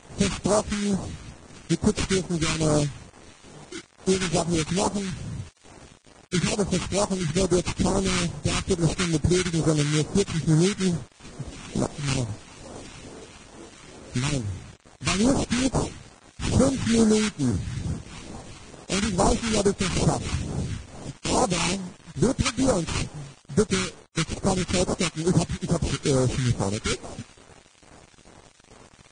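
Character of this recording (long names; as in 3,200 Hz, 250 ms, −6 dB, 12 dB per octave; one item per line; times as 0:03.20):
aliases and images of a low sample rate 1,800 Hz, jitter 20%
phaser sweep stages 2, 2.3 Hz, lowest notch 520–2,600 Hz
a quantiser's noise floor 8 bits, dither none
Ogg Vorbis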